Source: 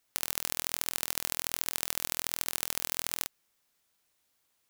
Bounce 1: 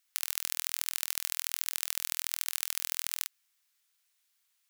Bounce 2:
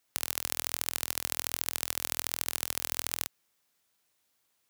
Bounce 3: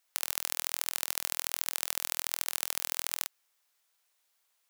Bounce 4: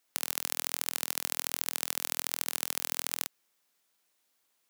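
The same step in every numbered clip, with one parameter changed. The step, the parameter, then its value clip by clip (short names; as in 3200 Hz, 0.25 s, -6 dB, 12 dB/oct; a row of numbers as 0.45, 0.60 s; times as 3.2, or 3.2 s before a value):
HPF, cutoff: 1500, 66, 590, 190 Hz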